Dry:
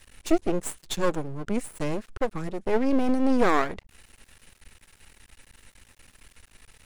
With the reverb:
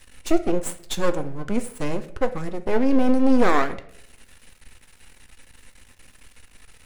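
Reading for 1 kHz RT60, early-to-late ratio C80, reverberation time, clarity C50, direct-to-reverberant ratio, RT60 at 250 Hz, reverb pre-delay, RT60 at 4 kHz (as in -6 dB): 0.55 s, 17.5 dB, 0.65 s, 14.0 dB, 8.0 dB, 0.75 s, 4 ms, 0.45 s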